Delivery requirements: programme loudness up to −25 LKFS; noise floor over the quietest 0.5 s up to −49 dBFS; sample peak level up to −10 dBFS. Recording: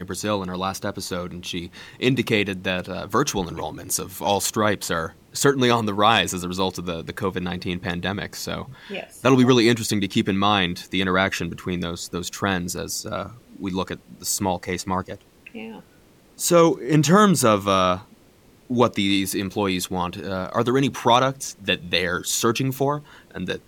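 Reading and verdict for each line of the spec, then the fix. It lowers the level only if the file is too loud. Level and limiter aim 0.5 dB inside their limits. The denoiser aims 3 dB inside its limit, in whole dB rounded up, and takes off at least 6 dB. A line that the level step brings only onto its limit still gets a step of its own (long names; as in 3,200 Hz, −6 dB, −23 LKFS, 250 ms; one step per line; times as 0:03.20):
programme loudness −22.5 LKFS: out of spec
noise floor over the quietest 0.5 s −54 dBFS: in spec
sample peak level −4.0 dBFS: out of spec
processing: level −3 dB
brickwall limiter −10.5 dBFS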